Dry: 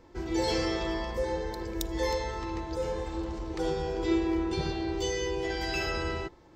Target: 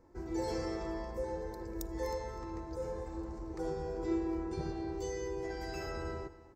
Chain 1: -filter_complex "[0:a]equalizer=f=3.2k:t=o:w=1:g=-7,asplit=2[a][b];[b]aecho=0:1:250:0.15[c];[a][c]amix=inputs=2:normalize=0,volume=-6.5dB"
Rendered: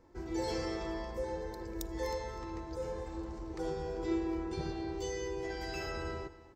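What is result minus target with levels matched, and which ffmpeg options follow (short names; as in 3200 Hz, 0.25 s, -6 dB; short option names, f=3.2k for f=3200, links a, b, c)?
4000 Hz band +4.5 dB
-filter_complex "[0:a]equalizer=f=3.2k:t=o:w=1:g=-16.5,asplit=2[a][b];[b]aecho=0:1:250:0.15[c];[a][c]amix=inputs=2:normalize=0,volume=-6.5dB"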